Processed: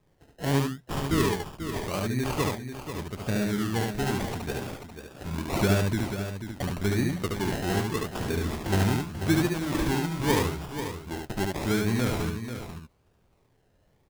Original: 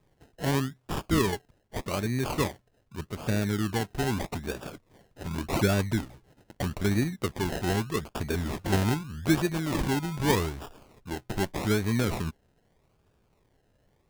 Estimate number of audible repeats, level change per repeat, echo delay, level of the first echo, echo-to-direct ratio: 3, no steady repeat, 72 ms, -3.0 dB, -1.5 dB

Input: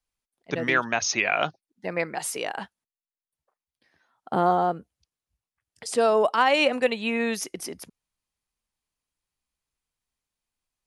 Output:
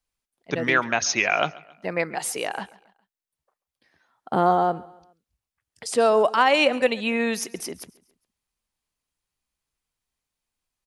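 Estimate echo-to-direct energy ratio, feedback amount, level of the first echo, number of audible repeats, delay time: -20.5 dB, 43%, -21.5 dB, 2, 0.137 s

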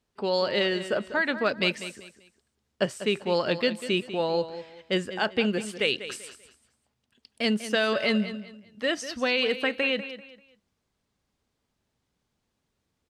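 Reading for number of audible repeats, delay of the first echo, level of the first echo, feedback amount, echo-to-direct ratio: 3, 0.195 s, -12.5 dB, 29%, -12.0 dB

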